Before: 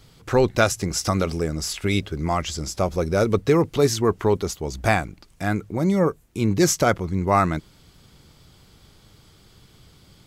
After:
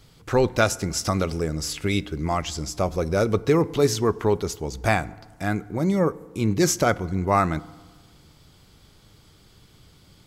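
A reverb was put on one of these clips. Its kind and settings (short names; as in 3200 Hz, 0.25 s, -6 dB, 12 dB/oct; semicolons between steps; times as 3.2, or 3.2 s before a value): FDN reverb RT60 1.4 s, low-frequency decay 1.1×, high-frequency decay 0.45×, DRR 18 dB; gain -1.5 dB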